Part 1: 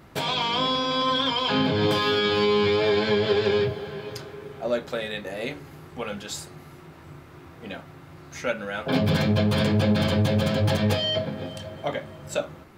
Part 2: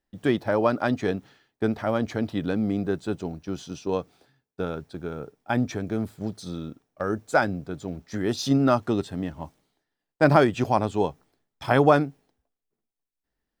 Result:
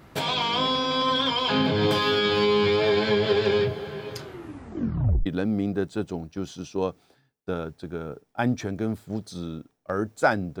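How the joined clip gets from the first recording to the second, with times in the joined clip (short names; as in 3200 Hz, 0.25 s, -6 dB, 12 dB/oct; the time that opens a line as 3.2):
part 1
4.23 tape stop 1.03 s
5.26 switch to part 2 from 2.37 s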